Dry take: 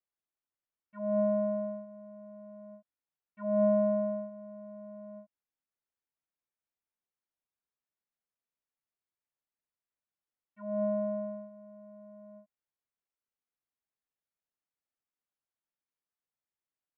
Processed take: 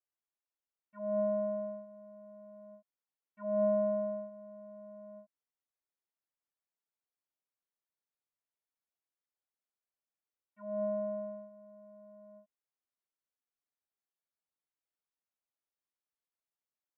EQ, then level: low shelf 250 Hz -11 dB; high shelf 2000 Hz -11 dB; 0.0 dB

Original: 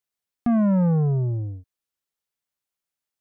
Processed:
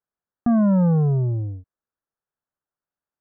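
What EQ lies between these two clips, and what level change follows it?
steep low-pass 1700 Hz 48 dB/oct; +2.0 dB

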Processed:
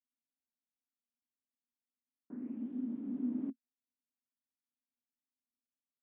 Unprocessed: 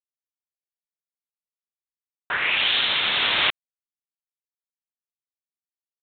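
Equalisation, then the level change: Butterworth band-pass 250 Hz, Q 5.3; air absorption 360 m; +14.5 dB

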